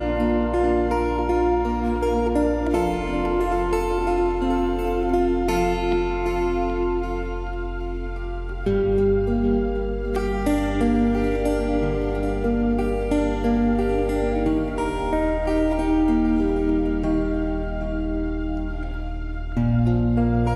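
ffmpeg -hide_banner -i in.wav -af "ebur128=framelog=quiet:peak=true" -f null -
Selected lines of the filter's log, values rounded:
Integrated loudness:
  I:         -22.8 LUFS
  Threshold: -32.8 LUFS
Loudness range:
  LRA:         2.9 LU
  Threshold: -42.9 LUFS
  LRA low:   -24.9 LUFS
  LRA high:  -22.0 LUFS
True peak:
  Peak:       -8.1 dBFS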